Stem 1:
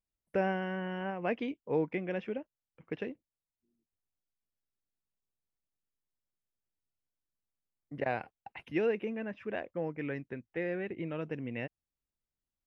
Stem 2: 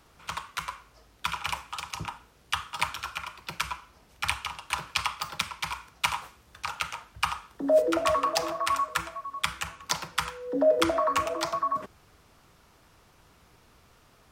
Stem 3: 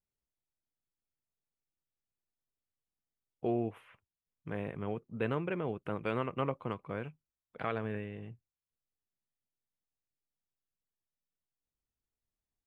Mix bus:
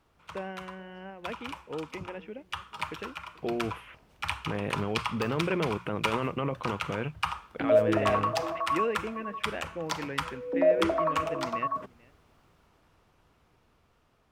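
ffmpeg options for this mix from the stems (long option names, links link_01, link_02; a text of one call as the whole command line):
ffmpeg -i stem1.wav -i stem2.wav -i stem3.wav -filter_complex "[0:a]volume=-7.5dB,asplit=2[link_01][link_02];[link_02]volume=-22dB[link_03];[1:a]highshelf=frequency=2100:gain=-10,volume=-7dB[link_04];[2:a]alimiter=level_in=6.5dB:limit=-24dB:level=0:latency=1:release=27,volume=-6.5dB,volume=3dB[link_05];[link_03]aecho=0:1:436:1[link_06];[link_01][link_04][link_05][link_06]amix=inputs=4:normalize=0,equalizer=frequency=2900:width_type=o:width=0.77:gain=3.5,bandreject=frequency=60:width_type=h:width=6,bandreject=frequency=120:width_type=h:width=6,bandreject=frequency=180:width_type=h:width=6,dynaudnorm=framelen=870:gausssize=7:maxgain=7dB" out.wav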